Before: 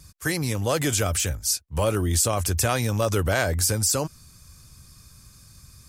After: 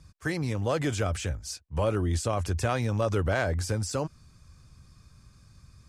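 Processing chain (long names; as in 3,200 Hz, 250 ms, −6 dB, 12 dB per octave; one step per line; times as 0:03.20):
low-pass filter 8,600 Hz 12 dB per octave
high-shelf EQ 3,700 Hz −12 dB
level −3 dB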